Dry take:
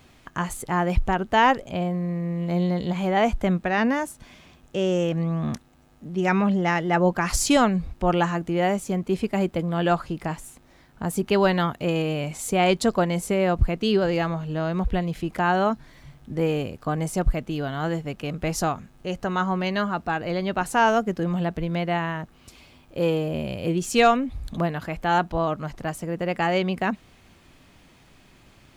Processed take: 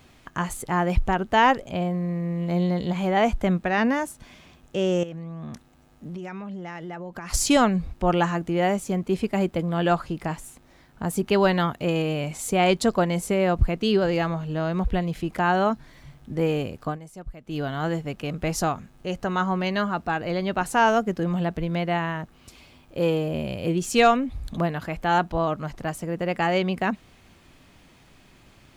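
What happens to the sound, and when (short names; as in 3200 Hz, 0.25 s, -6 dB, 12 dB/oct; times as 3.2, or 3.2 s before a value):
5.03–7.34 compressor 16:1, threshold -31 dBFS
16.86–17.57 dip -16 dB, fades 0.13 s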